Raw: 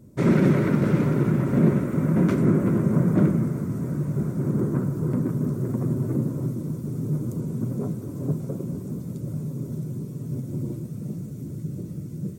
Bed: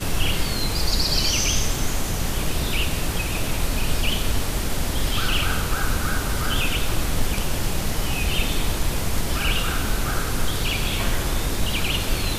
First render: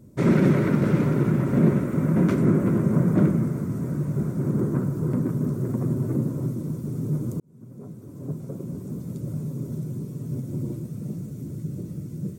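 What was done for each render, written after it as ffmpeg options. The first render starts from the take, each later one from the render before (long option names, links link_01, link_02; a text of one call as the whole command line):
ffmpeg -i in.wav -filter_complex "[0:a]asplit=2[link_01][link_02];[link_01]atrim=end=7.4,asetpts=PTS-STARTPTS,afade=type=out:start_time=7.396:duration=0.004:curve=hsin[link_03];[link_02]atrim=start=7.4,asetpts=PTS-STARTPTS,afade=type=in:duration=1.77[link_04];[link_03][link_04]concat=n=2:v=0:a=1" out.wav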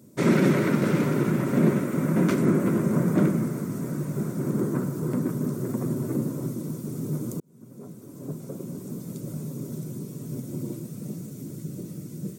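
ffmpeg -i in.wav -af "highpass=170,highshelf=frequency=2400:gain=8" out.wav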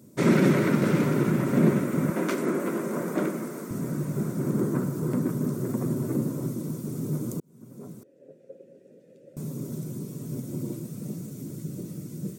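ffmpeg -i in.wav -filter_complex "[0:a]asettb=1/sr,asplit=3[link_01][link_02][link_03];[link_01]atrim=end=2.104[link_04];[link_02]atrim=start=2.1:end=3.71,asetpts=PTS-STARTPTS,afade=type=in:duration=0.004:curve=qsin,afade=type=out:start_time=1.606:duration=0.004:curve=qsin,highpass=340[link_05];[link_03]atrim=start=3.706[link_06];[link_04][link_05]acrossfade=duration=0.004:curve1=hsin:curve2=qsin[link_07];[link_07][link_06]acrossfade=duration=0.004:curve1=qsin:curve2=hsin,asettb=1/sr,asplit=3[link_08][link_09][link_10];[link_08]atrim=end=8.034[link_11];[link_09]atrim=start=8.03:end=9.37,asetpts=PTS-STARTPTS,afade=type=in:duration=0.004:curve=qsin,afade=type=out:start_time=1.336:duration=0.004:curve=qsin,asplit=3[link_12][link_13][link_14];[link_12]bandpass=frequency=530:width_type=q:width=8,volume=0dB[link_15];[link_13]bandpass=frequency=1840:width_type=q:width=8,volume=-6dB[link_16];[link_14]bandpass=frequency=2480:width_type=q:width=8,volume=-9dB[link_17];[link_15][link_16][link_17]amix=inputs=3:normalize=0[link_18];[link_10]atrim=start=9.366[link_19];[link_11][link_18]acrossfade=duration=0.004:curve1=hsin:curve2=qsin[link_20];[link_20][link_19]acrossfade=duration=0.004:curve1=qsin:curve2=hsin" out.wav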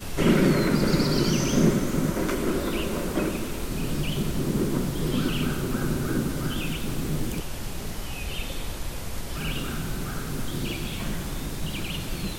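ffmpeg -i in.wav -i bed.wav -filter_complex "[1:a]volume=-9.5dB[link_01];[0:a][link_01]amix=inputs=2:normalize=0" out.wav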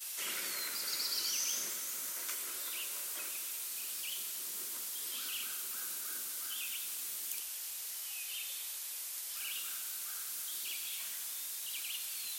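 ffmpeg -i in.wav -af "highpass=frequency=830:poles=1,aderivative" out.wav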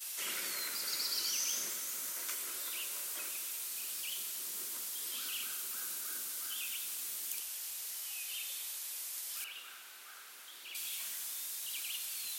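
ffmpeg -i in.wav -filter_complex "[0:a]asettb=1/sr,asplit=3[link_01][link_02][link_03];[link_01]atrim=end=9.444[link_04];[link_02]atrim=start=9.44:end=10.75,asetpts=PTS-STARTPTS,afade=type=in:duration=0.004:curve=qsin,afade=type=out:start_time=1.306:duration=0.004:curve=qsin,bass=frequency=250:gain=-12,treble=frequency=4000:gain=-14[link_05];[link_03]atrim=start=10.746[link_06];[link_04][link_05]acrossfade=duration=0.004:curve1=hsin:curve2=qsin[link_07];[link_07][link_06]acrossfade=duration=0.004:curve1=qsin:curve2=hsin" out.wav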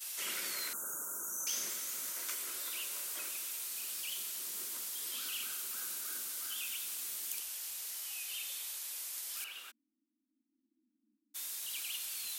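ffmpeg -i in.wav -filter_complex "[0:a]asettb=1/sr,asplit=3[link_01][link_02][link_03];[link_01]atrim=end=0.734[link_04];[link_02]atrim=start=0.73:end=1.47,asetpts=PTS-STARTPTS,afade=type=in:duration=0.004:curve=qsin,afade=type=out:start_time=0.736:duration=0.004:curve=qsin,asuperstop=centerf=3200:order=20:qfactor=0.68[link_05];[link_03]atrim=start=1.466[link_06];[link_04][link_05]acrossfade=duration=0.004:curve1=hsin:curve2=qsin[link_07];[link_07][link_06]acrossfade=duration=0.004:curve1=qsin:curve2=hsin,asplit=3[link_08][link_09][link_10];[link_08]afade=type=out:start_time=9.7:duration=0.02[link_11];[link_09]asuperpass=centerf=260:order=12:qfactor=2.4,afade=type=in:start_time=9.7:duration=0.02,afade=type=out:start_time=11.34:duration=0.02[link_12];[link_10]afade=type=in:start_time=11.34:duration=0.02[link_13];[link_11][link_12][link_13]amix=inputs=3:normalize=0" out.wav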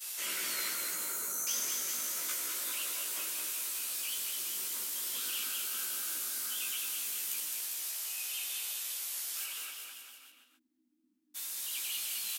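ffmpeg -i in.wav -filter_complex "[0:a]asplit=2[link_01][link_02];[link_02]adelay=16,volume=-3dB[link_03];[link_01][link_03]amix=inputs=2:normalize=0,aecho=1:1:210|399|569.1|722.2|860:0.631|0.398|0.251|0.158|0.1" out.wav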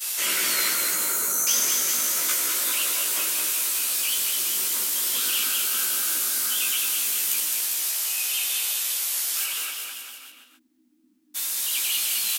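ffmpeg -i in.wav -af "volume=12dB" out.wav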